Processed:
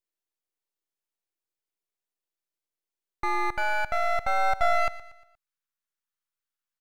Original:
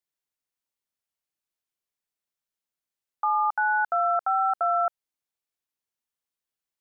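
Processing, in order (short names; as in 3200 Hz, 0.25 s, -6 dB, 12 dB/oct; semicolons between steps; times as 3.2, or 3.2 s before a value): high-pass sweep 350 Hz -> 1300 Hz, 4.02–5.21; half-wave rectifier; feedback echo 0.118 s, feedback 44%, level -17 dB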